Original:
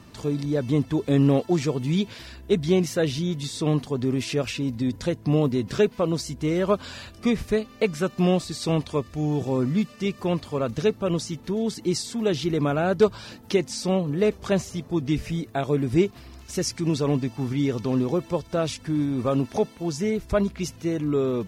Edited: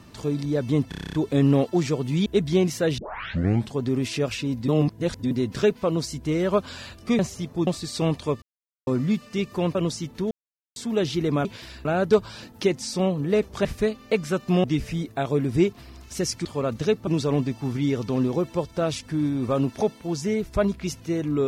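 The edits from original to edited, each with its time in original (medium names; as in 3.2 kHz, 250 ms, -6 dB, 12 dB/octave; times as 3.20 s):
0.89 s: stutter 0.03 s, 9 plays
2.02–2.42 s: move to 12.74 s
3.14 s: tape start 0.77 s
4.84–5.47 s: reverse
7.35–8.34 s: swap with 14.54–15.02 s
9.09–9.54 s: mute
10.42–11.04 s: move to 16.83 s
11.60–12.05 s: mute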